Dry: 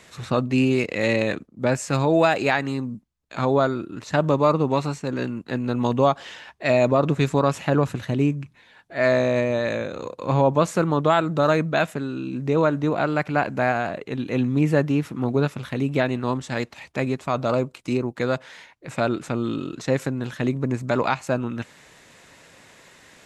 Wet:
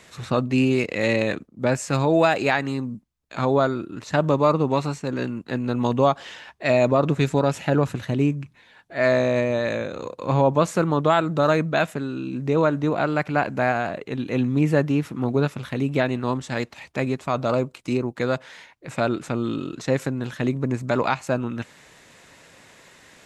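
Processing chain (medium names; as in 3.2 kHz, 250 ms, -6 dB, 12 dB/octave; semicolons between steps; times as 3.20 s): 7.22–7.81 s: band-stop 1.1 kHz, Q 6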